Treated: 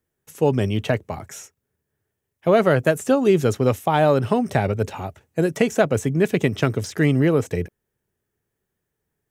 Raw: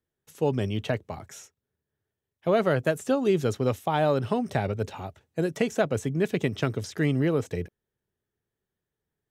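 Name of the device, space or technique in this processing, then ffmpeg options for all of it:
exciter from parts: -filter_complex "[0:a]asplit=2[a][b];[b]highpass=3.2k,asoftclip=type=tanh:threshold=-39.5dB,highpass=f=2.3k:w=0.5412,highpass=f=2.3k:w=1.3066,volume=-6.5dB[c];[a][c]amix=inputs=2:normalize=0,volume=6.5dB"

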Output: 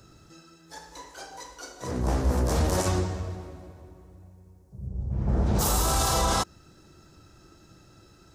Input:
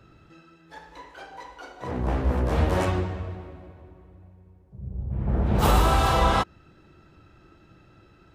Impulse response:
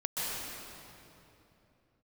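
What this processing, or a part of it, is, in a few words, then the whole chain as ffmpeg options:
over-bright horn tweeter: -filter_complex "[0:a]highshelf=f=4.1k:t=q:w=1.5:g=13,alimiter=limit=-15.5dB:level=0:latency=1:release=20,asettb=1/sr,asplit=3[a][b][c];[a]atrim=end=1.384[d];[b]atrim=start=1.38:end=2.03,asetpts=PTS-STARTPTS,afade=t=in:d=0.004:c=qsin,afade=t=out:st=0.646:d=0.004:c=qsin,equalizer=f=810:w=3.8:g=-7[e];[c]atrim=start=2.026[f];[d][e]acrossfade=d=0.004:c1=hsin:c2=qsin[g];[g][f]acrossfade=d=0.004:c1=qsin:c2=hsin,asettb=1/sr,asplit=3[h][i][j];[h]atrim=end=4.874[k];[i]atrim=start=4.87:end=5.59,asetpts=PTS-STARTPTS,afade=t=in:d=0.004:c=qsin,afade=t=out:st=0.716:d=0.004:c=qsin,lowpass=8.1k[l];[j]atrim=start=5.586[m];[k][l]acrossfade=d=0.004:c1=hsin:c2=qsin[n];[n][m]acrossfade=d=0.004:c1=qsin:c2=hsin"

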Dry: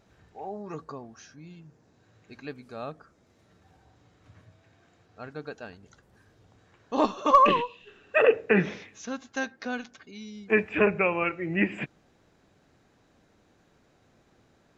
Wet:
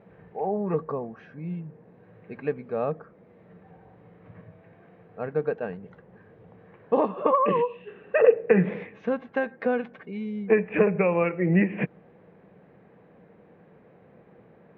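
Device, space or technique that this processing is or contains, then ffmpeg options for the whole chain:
bass amplifier: -filter_complex "[0:a]asettb=1/sr,asplit=3[a][b][c];[a]atrim=end=7.084[d];[b]atrim=start=7.08:end=7.55,asetpts=PTS-STARTPTS,afade=t=in:d=0.004:c=qsin,afade=t=out:st=0.466:d=0.004:c=qsin,lowpass=3.4k[e];[c]atrim=start=7.546[f];[d][e]acrossfade=d=0.004:c1=hsin:c2=qsin[g];[g][f]acrossfade=d=0.004:c1=qsin:c2=hsin,acompressor=threshold=-29dB:ratio=4,highpass=82,equalizer=f=84:t=q:w=4:g=-9,equalizer=f=180:t=q:w=4:g=9,equalizer=f=280:t=q:w=4:g=-4,equalizer=f=480:t=q:w=4:g=9,equalizer=f=1.4k:t=q:w=4:g=-6,lowpass=f=2.2k:w=0.5412,lowpass=f=2.2k:w=1.3066,volume=7.5dB"

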